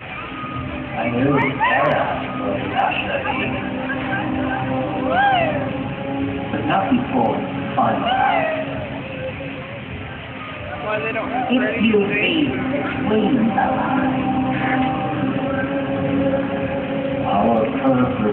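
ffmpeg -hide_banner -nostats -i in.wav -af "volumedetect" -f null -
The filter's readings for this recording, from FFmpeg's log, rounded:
mean_volume: -20.0 dB
max_volume: -6.4 dB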